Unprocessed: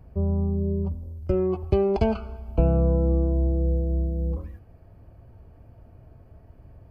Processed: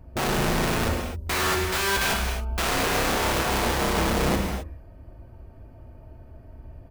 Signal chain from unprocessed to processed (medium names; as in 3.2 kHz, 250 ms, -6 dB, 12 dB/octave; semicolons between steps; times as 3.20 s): comb 3.3 ms, depth 38%; integer overflow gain 23 dB; gated-style reverb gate 290 ms flat, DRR 1.5 dB; trim +1.5 dB